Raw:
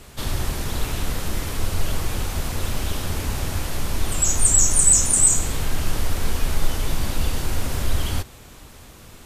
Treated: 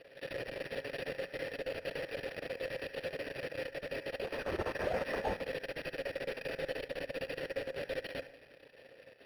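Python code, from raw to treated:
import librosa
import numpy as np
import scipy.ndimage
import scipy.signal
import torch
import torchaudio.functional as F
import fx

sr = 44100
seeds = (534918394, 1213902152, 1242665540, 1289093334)

p1 = x + 0.48 * np.pad(x, (int(7.3 * sr / 1000.0), 0))[:len(x)]
p2 = np.maximum(p1, 0.0)
p3 = fx.vowel_filter(p2, sr, vowel='e')
p4 = fx.high_shelf(p3, sr, hz=4600.0, db=7.0)
p5 = p4 + fx.echo_wet_bandpass(p4, sr, ms=71, feedback_pct=33, hz=1300.0, wet_db=-10.5, dry=0)
p6 = fx.room_shoebox(p5, sr, seeds[0], volume_m3=2600.0, walls='furnished', distance_m=0.56)
p7 = np.interp(np.arange(len(p6)), np.arange(len(p6))[::6], p6[::6])
y = p7 * librosa.db_to_amplitude(6.5)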